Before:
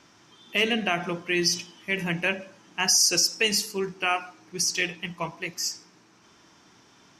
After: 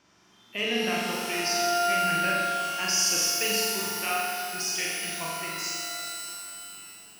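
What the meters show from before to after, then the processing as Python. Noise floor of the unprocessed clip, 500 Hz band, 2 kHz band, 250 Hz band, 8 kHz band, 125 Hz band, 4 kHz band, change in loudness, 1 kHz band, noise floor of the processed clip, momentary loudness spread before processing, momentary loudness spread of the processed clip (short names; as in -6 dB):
-58 dBFS, 0.0 dB, -1.5 dB, -3.5 dB, -1.5 dB, -5.5 dB, -2.0 dB, -1.5 dB, +5.5 dB, -59 dBFS, 13 LU, 12 LU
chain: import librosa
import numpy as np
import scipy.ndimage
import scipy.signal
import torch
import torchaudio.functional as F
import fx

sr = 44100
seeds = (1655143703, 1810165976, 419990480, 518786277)

y = fx.room_flutter(x, sr, wall_m=7.4, rt60_s=1.2)
y = fx.rev_shimmer(y, sr, seeds[0], rt60_s=3.0, semitones=12, shimmer_db=-2, drr_db=5.0)
y = y * librosa.db_to_amplitude(-8.5)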